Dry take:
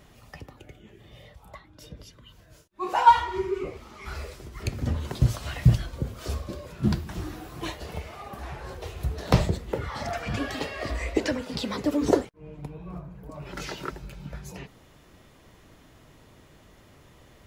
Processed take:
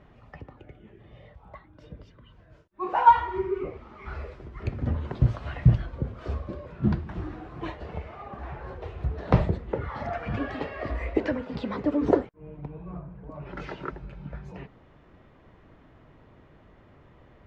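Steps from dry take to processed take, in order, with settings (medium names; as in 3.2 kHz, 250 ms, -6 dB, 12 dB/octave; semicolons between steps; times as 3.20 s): low-pass 1.9 kHz 12 dB/octave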